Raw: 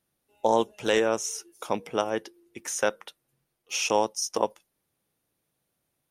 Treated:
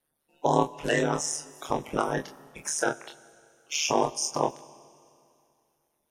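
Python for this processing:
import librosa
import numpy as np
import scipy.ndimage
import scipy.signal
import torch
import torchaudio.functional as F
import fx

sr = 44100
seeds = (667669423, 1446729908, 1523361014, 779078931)

p1 = fx.spec_quant(x, sr, step_db=30)
p2 = fx.high_shelf(p1, sr, hz=9300.0, db=8.0, at=(1.5, 2.7))
p3 = fx.level_steps(p2, sr, step_db=18)
p4 = p2 + (p3 * 10.0 ** (-2.0 / 20.0))
p5 = p4 * np.sin(2.0 * np.pi * 75.0 * np.arange(len(p4)) / sr)
p6 = p5 + fx.room_early_taps(p5, sr, ms=(26, 41), db=(-5.0, -11.5), dry=0)
y = fx.rev_schroeder(p6, sr, rt60_s=2.5, comb_ms=31, drr_db=18.5)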